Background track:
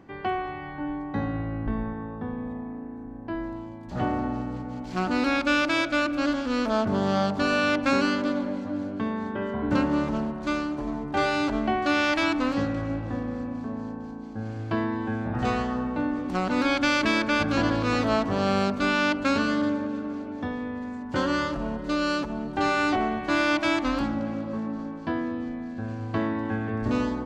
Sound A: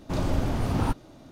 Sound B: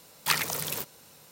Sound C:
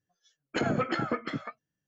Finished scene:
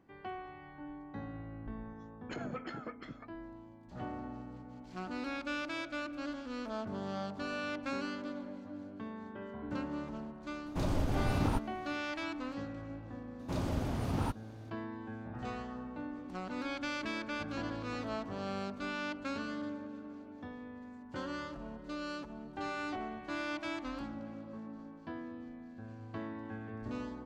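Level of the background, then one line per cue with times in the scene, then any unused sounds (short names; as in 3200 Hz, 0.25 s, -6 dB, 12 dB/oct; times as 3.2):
background track -15 dB
1.75 add C -13.5 dB
10.66 add A -5.5 dB + limiter -16 dBFS
13.39 add A -7.5 dB + HPF 48 Hz
not used: B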